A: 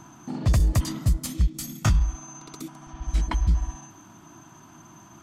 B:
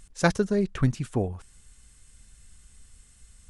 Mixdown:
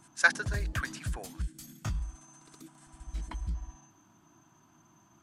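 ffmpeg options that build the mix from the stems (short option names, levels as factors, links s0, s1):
-filter_complex "[0:a]volume=0.211[s0];[1:a]agate=range=0.282:threshold=0.00355:ratio=16:detection=peak,highpass=1200,equalizer=f=1600:w=5.3:g=11.5,volume=0.944[s1];[s0][s1]amix=inputs=2:normalize=0"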